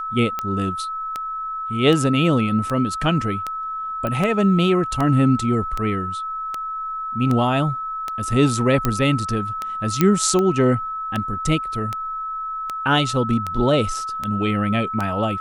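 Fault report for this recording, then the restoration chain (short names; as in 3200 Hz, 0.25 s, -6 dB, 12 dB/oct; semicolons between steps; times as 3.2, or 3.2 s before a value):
tick 78 rpm -11 dBFS
tone 1300 Hz -25 dBFS
4.07 pop -13 dBFS
8.85 pop
10.01 pop -3 dBFS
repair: de-click; notch 1300 Hz, Q 30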